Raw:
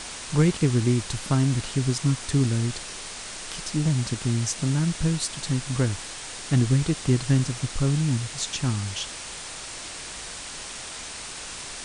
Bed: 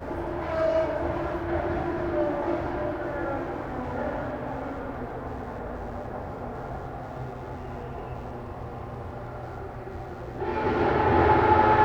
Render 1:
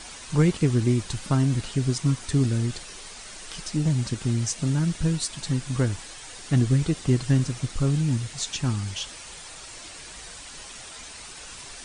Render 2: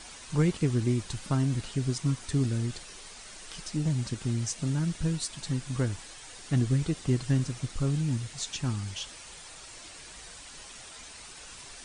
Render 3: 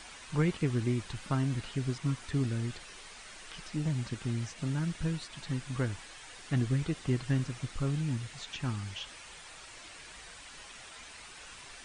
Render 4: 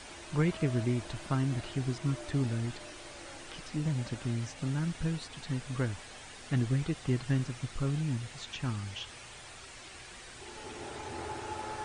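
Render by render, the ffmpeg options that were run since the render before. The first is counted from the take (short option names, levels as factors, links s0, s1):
-af "afftdn=nr=8:nf=-38"
-af "volume=0.562"
-filter_complex "[0:a]acrossover=split=3000[s0][s1];[s1]acompressor=threshold=0.00158:ratio=4:attack=1:release=60[s2];[s0][s2]amix=inputs=2:normalize=0,tiltshelf=f=1100:g=-4"
-filter_complex "[1:a]volume=0.0944[s0];[0:a][s0]amix=inputs=2:normalize=0"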